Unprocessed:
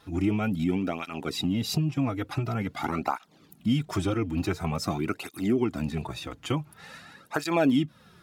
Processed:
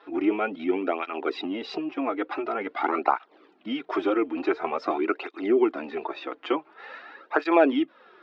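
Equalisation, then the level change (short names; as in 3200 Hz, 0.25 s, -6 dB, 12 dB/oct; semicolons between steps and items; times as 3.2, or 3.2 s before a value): elliptic band-pass 350–6300 Hz, stop band 40 dB; air absorption 430 m; +8.5 dB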